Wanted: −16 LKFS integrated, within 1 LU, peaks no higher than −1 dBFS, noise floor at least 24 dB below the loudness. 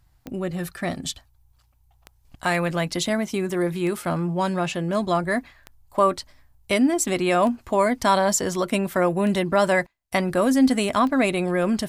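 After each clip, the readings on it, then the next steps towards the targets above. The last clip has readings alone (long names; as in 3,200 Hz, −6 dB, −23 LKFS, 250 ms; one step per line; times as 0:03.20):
number of clicks 7; integrated loudness −23.0 LKFS; sample peak −7.0 dBFS; target loudness −16.0 LKFS
→ click removal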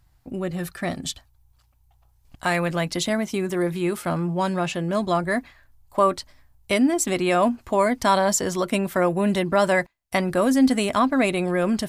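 number of clicks 0; integrated loudness −23.0 LKFS; sample peak −7.0 dBFS; target loudness −16.0 LKFS
→ level +7 dB
brickwall limiter −1 dBFS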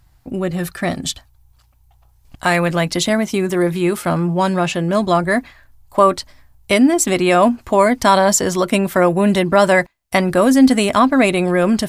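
integrated loudness −16.0 LKFS; sample peak −1.0 dBFS; background noise floor −54 dBFS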